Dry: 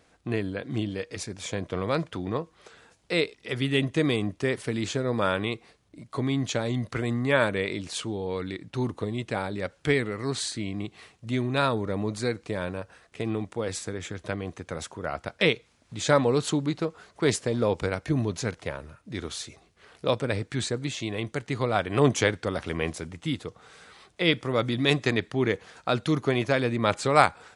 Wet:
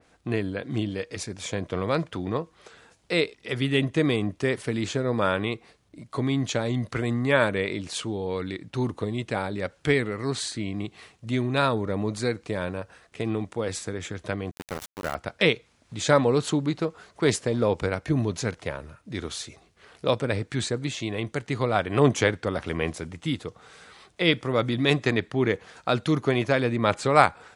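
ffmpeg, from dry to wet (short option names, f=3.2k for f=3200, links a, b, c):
-filter_complex "[0:a]asettb=1/sr,asplit=3[a][b][c];[a]atrim=end=14.514[d];[b]atrim=start=14.51:end=15.15,asetpts=PTS-STARTPTS,afade=t=in:d=0.004:c=qsin,afade=t=out:st=0.636:d=0.004:c=qsin,aeval=exprs='val(0)*gte(abs(val(0)),0.0282)':c=same[e];[c]atrim=start=15.146[f];[d][e]acrossfade=d=0.004:c1=hsin:c2=qsin[g];[g][f]acrossfade=d=0.004:c1=qsin:c2=hsin,adynamicequalizer=threshold=0.01:dfrequency=2900:dqfactor=0.7:tfrequency=2900:tqfactor=0.7:attack=5:release=100:ratio=0.375:range=2:mode=cutabove:tftype=highshelf,volume=1.5dB"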